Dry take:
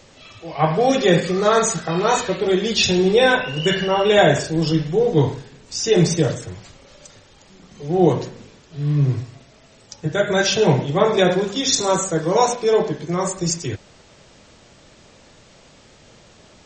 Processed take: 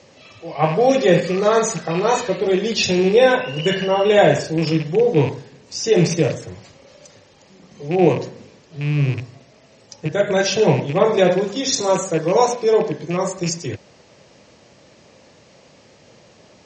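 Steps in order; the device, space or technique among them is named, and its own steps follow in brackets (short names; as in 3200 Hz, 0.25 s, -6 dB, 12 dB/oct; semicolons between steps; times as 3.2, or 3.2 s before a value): car door speaker with a rattle (rattling part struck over -22 dBFS, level -20 dBFS; speaker cabinet 98–6800 Hz, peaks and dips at 530 Hz +4 dB, 1400 Hz -5 dB, 3500 Hz -5 dB)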